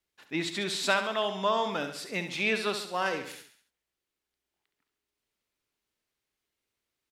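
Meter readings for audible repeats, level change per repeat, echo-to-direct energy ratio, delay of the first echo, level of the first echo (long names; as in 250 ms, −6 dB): 4, −6.0 dB, −8.0 dB, 68 ms, −9.0 dB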